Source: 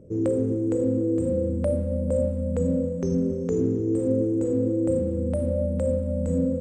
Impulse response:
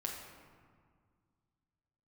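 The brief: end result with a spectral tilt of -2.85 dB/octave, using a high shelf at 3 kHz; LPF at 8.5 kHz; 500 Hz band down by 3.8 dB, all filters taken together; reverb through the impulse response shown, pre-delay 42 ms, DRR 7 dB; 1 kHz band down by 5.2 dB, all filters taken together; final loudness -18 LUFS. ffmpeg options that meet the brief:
-filter_complex "[0:a]lowpass=8500,equalizer=f=500:t=o:g=-3,equalizer=f=1000:t=o:g=-5,highshelf=f=3000:g=-8,asplit=2[s0][s1];[1:a]atrim=start_sample=2205,adelay=42[s2];[s1][s2]afir=irnorm=-1:irlink=0,volume=0.422[s3];[s0][s3]amix=inputs=2:normalize=0,volume=2.11"

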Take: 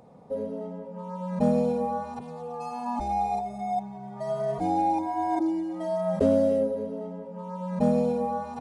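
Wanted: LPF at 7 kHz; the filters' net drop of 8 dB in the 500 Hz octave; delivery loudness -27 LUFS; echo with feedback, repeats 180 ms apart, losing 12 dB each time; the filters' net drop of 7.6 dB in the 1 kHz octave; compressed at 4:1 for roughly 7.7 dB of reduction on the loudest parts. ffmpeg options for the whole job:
-af "lowpass=7000,equalizer=f=500:t=o:g=-7.5,equalizer=f=1000:t=o:g=-7,acompressor=threshold=0.0316:ratio=4,aecho=1:1:180|360|540:0.251|0.0628|0.0157,volume=2.82"

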